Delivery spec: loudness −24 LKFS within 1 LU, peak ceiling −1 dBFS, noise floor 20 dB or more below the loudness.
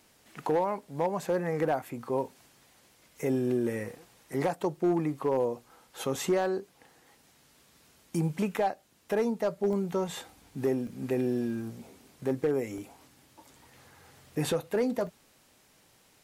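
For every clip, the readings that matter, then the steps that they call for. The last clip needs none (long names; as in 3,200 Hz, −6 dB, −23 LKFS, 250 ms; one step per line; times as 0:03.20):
share of clipped samples 0.5%; peaks flattened at −20.0 dBFS; number of dropouts 4; longest dropout 1.1 ms; integrated loudness −31.0 LKFS; sample peak −20.0 dBFS; target loudness −24.0 LKFS
→ clipped peaks rebuilt −20 dBFS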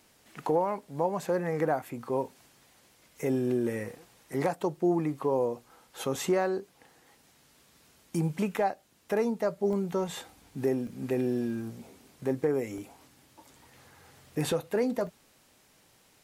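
share of clipped samples 0.0%; number of dropouts 4; longest dropout 1.1 ms
→ repair the gap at 0:09.73/0:10.87/0:12.78/0:15.07, 1.1 ms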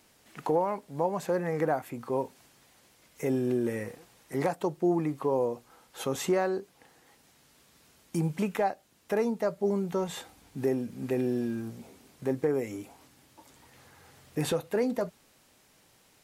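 number of dropouts 0; integrated loudness −31.0 LKFS; sample peak −15.5 dBFS; target loudness −24.0 LKFS
→ level +7 dB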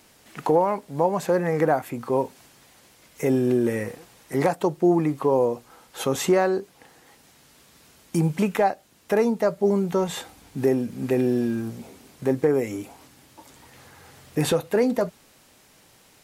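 integrated loudness −24.0 LKFS; sample peak −8.5 dBFS; background noise floor −56 dBFS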